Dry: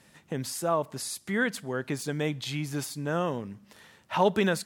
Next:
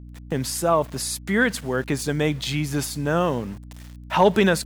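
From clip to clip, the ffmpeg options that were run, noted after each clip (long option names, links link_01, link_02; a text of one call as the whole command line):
ffmpeg -i in.wav -af "aeval=exprs='val(0)*gte(abs(val(0)),0.00398)':channel_layout=same,acontrast=89,aeval=exprs='val(0)+0.0112*(sin(2*PI*60*n/s)+sin(2*PI*2*60*n/s)/2+sin(2*PI*3*60*n/s)/3+sin(2*PI*4*60*n/s)/4+sin(2*PI*5*60*n/s)/5)':channel_layout=same" out.wav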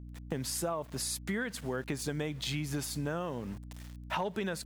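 ffmpeg -i in.wav -af "acompressor=threshold=-25dB:ratio=12,volume=-5.5dB" out.wav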